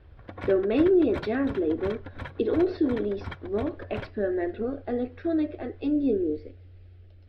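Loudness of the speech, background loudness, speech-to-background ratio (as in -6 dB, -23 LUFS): -27.0 LUFS, -41.0 LUFS, 14.0 dB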